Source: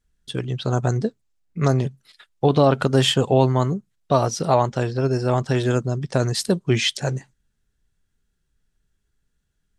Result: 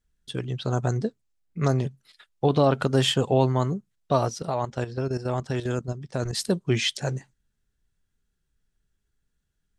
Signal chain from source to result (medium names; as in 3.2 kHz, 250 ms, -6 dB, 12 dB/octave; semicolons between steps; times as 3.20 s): 4.29–6.33 s: level held to a coarse grid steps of 11 dB; trim -4 dB